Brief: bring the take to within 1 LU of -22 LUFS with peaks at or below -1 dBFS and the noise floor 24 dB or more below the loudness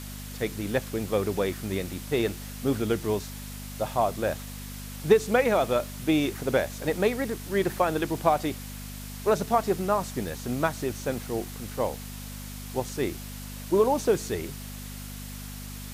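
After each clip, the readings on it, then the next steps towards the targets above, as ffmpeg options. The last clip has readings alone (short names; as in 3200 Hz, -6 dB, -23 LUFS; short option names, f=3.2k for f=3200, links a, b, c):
hum 50 Hz; harmonics up to 250 Hz; hum level -37 dBFS; noise floor -39 dBFS; noise floor target -52 dBFS; loudness -27.5 LUFS; peak -7.0 dBFS; loudness target -22.0 LUFS
-> -af "bandreject=f=50:t=h:w=4,bandreject=f=100:t=h:w=4,bandreject=f=150:t=h:w=4,bandreject=f=200:t=h:w=4,bandreject=f=250:t=h:w=4"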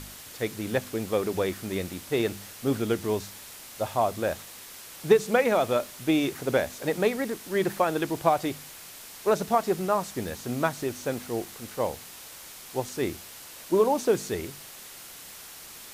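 hum none; noise floor -45 dBFS; noise floor target -52 dBFS
-> -af "afftdn=nr=7:nf=-45"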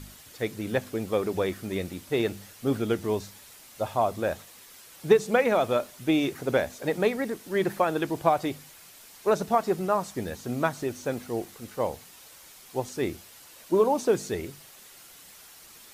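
noise floor -51 dBFS; noise floor target -52 dBFS
-> -af "afftdn=nr=6:nf=-51"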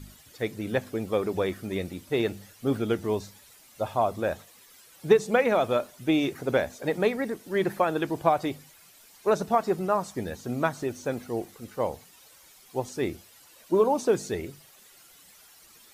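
noise floor -55 dBFS; loudness -28.0 LUFS; peak -7.5 dBFS; loudness target -22.0 LUFS
-> -af "volume=6dB"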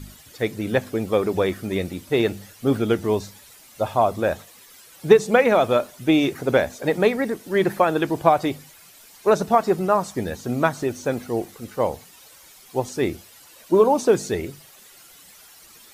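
loudness -22.0 LUFS; peak -1.5 dBFS; noise floor -49 dBFS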